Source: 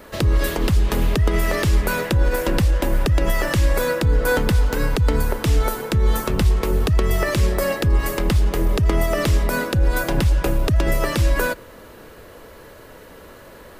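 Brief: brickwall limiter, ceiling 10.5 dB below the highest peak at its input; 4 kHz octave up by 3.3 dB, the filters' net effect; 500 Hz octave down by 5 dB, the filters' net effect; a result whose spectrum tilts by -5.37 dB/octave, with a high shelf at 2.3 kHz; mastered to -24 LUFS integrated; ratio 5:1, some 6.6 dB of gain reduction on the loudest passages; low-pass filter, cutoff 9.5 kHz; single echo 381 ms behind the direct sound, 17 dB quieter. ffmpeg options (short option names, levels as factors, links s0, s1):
-af "lowpass=9500,equalizer=f=500:t=o:g=-6,highshelf=f=2300:g=-3.5,equalizer=f=4000:t=o:g=7.5,acompressor=threshold=0.1:ratio=5,alimiter=limit=0.106:level=0:latency=1,aecho=1:1:381:0.141,volume=1.78"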